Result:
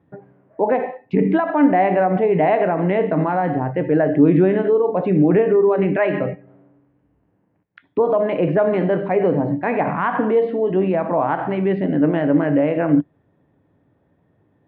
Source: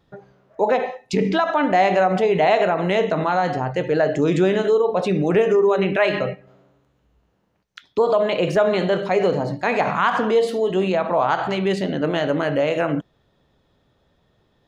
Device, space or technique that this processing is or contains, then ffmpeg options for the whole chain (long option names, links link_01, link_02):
bass cabinet: -af "highpass=88,equalizer=frequency=100:width_type=q:width=4:gain=8,equalizer=frequency=160:width_type=q:width=4:gain=5,equalizer=frequency=290:width_type=q:width=4:gain=10,equalizer=frequency=1300:width_type=q:width=4:gain=-6,lowpass=frequency=2100:width=0.5412,lowpass=frequency=2100:width=1.3066"